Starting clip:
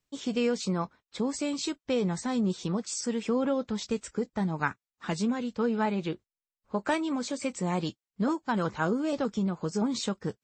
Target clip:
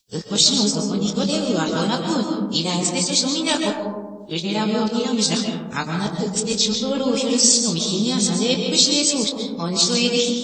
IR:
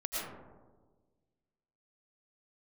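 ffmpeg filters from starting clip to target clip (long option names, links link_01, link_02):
-filter_complex "[0:a]areverse,highshelf=frequency=2600:width_type=q:width=1.5:gain=13.5,asplit=2[link_01][link_02];[1:a]atrim=start_sample=2205,lowpass=7100,adelay=24[link_03];[link_02][link_03]afir=irnorm=-1:irlink=0,volume=-5dB[link_04];[link_01][link_04]amix=inputs=2:normalize=0,volume=4.5dB"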